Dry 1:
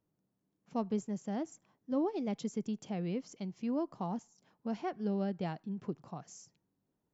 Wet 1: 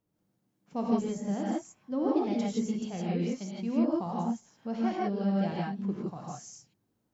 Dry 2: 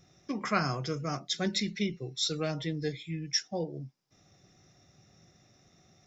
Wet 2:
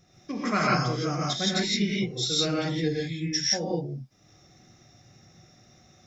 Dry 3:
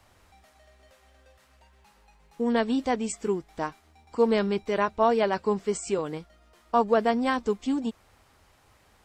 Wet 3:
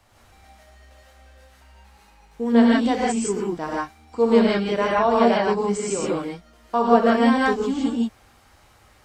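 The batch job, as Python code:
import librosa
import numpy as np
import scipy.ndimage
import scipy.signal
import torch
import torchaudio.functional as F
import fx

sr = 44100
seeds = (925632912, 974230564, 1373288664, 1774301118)

y = fx.rev_gated(x, sr, seeds[0], gate_ms=190, shape='rising', drr_db=-5.0)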